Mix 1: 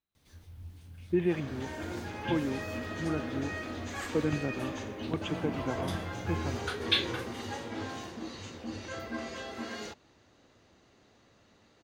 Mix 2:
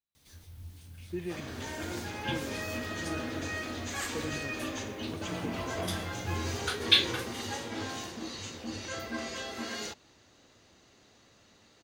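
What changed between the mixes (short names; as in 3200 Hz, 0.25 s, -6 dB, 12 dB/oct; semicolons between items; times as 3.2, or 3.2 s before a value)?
speech -9.5 dB; master: add high shelf 3100 Hz +9.5 dB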